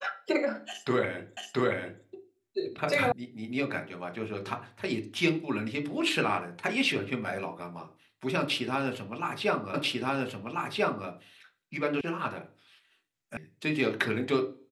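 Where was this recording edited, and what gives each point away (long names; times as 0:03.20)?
0:01.37: the same again, the last 0.68 s
0:03.12: cut off before it has died away
0:09.74: the same again, the last 1.34 s
0:12.01: cut off before it has died away
0:13.37: cut off before it has died away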